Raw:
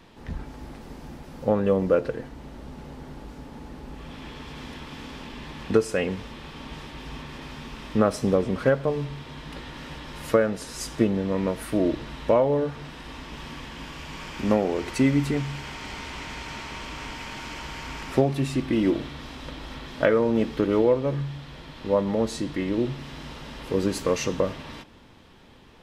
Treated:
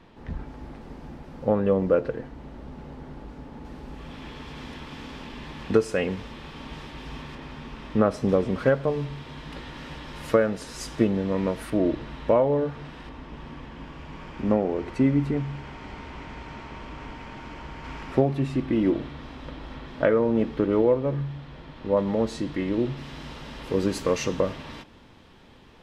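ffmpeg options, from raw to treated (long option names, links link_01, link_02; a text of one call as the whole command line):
ffmpeg -i in.wav -af "asetnsamples=nb_out_samples=441:pad=0,asendcmd='3.65 lowpass f 6000;7.35 lowpass f 2400;8.29 lowpass f 5800;11.7 lowpass f 2400;13.09 lowpass f 1000;17.84 lowpass f 1700;21.97 lowpass f 3700;22.97 lowpass f 7600',lowpass=frequency=2300:poles=1" out.wav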